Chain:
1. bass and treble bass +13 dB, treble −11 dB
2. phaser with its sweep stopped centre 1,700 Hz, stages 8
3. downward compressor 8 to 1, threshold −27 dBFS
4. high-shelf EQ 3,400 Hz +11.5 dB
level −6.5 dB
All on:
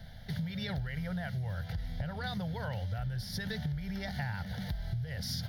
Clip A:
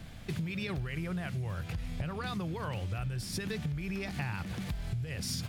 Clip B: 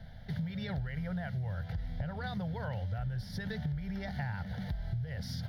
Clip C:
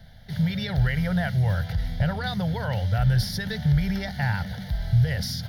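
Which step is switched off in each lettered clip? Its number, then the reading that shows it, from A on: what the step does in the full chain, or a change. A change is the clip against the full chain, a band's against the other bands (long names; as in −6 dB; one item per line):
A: 2, 8 kHz band +5.0 dB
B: 4, 4 kHz band −6.5 dB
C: 3, average gain reduction 9.5 dB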